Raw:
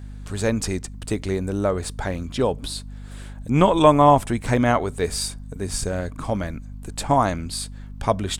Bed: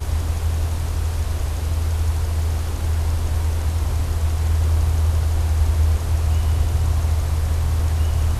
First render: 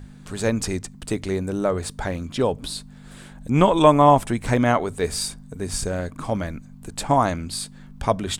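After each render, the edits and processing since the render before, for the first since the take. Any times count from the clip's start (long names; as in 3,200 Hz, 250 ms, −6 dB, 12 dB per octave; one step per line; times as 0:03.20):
mains-hum notches 50/100 Hz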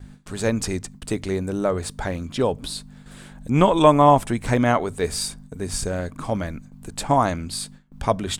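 noise gate with hold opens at −34 dBFS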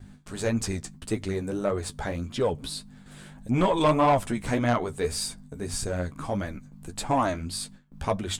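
flanger 1.7 Hz, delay 8 ms, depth 7.1 ms, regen +29%
soft clipping −14.5 dBFS, distortion −13 dB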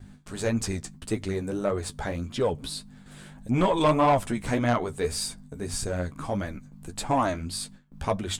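no processing that can be heard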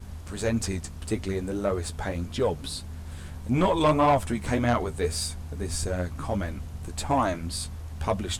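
mix in bed −18.5 dB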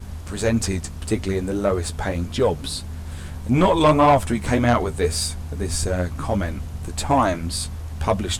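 level +6 dB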